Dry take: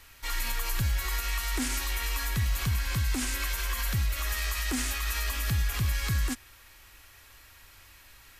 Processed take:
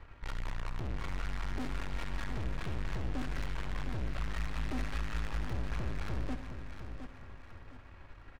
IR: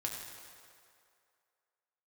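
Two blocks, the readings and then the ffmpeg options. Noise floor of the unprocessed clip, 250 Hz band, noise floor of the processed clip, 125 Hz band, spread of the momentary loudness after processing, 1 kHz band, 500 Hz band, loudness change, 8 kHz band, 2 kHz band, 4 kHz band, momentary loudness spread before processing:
−54 dBFS, −4.0 dB, −52 dBFS, −8.0 dB, 15 LU, −6.0 dB, 0.0 dB, −9.5 dB, −23.0 dB, −11.0 dB, −15.0 dB, 2 LU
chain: -filter_complex "[0:a]adynamicsmooth=sensitivity=1:basefreq=1200,aeval=exprs='(tanh(200*val(0)+0.75)-tanh(0.75))/200':channel_layout=same,aecho=1:1:711|1422|2133|2844:0.355|0.131|0.0486|0.018,asplit=2[link_01][link_02];[1:a]atrim=start_sample=2205,adelay=68[link_03];[link_02][link_03]afir=irnorm=-1:irlink=0,volume=-11dB[link_04];[link_01][link_04]amix=inputs=2:normalize=0,volume=9.5dB"

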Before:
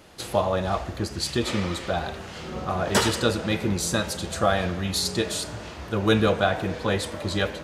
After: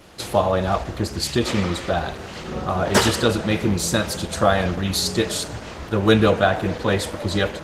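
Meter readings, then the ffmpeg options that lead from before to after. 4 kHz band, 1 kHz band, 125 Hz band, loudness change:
+3.0 dB, +4.0 dB, +4.5 dB, +4.0 dB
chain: -af "volume=5dB" -ar 48000 -c:a libopus -b:a 16k

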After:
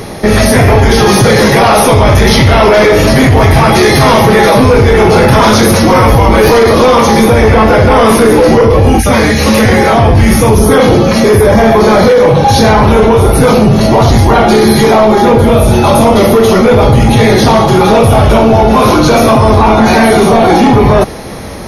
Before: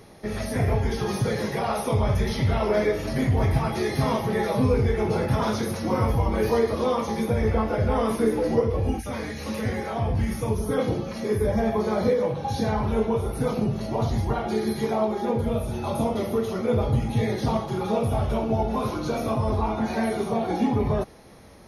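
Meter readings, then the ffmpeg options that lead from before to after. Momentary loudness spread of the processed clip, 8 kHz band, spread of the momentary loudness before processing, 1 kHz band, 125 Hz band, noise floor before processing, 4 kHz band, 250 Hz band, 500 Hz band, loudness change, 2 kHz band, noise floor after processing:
1 LU, +24.0 dB, 5 LU, +21.5 dB, +17.0 dB, −34 dBFS, +24.0 dB, +18.5 dB, +19.0 dB, +19.0 dB, +23.5 dB, −8 dBFS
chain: -af "acontrast=50,apsyclip=21.5dB,volume=-1.5dB"

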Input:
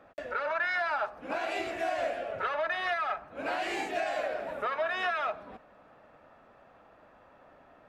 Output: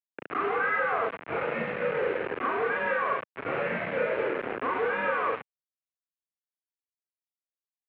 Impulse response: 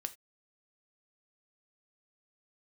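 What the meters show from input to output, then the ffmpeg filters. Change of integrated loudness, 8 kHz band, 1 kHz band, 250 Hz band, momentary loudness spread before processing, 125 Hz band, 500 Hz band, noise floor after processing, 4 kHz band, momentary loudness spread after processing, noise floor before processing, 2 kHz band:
+3.0 dB, below −25 dB, +2.0 dB, +6.0 dB, 6 LU, +12.5 dB, +4.5 dB, below −85 dBFS, −6.0 dB, 5 LU, −59 dBFS, +3.0 dB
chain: -af "aecho=1:1:34.99|116.6|265.3:0.891|0.447|0.316,acrusher=bits=4:mix=0:aa=0.000001,highpass=frequency=330:width_type=q:width=0.5412,highpass=frequency=330:width_type=q:width=1.307,lowpass=frequency=2600:width_type=q:width=0.5176,lowpass=frequency=2600:width_type=q:width=0.7071,lowpass=frequency=2600:width_type=q:width=1.932,afreqshift=-170"

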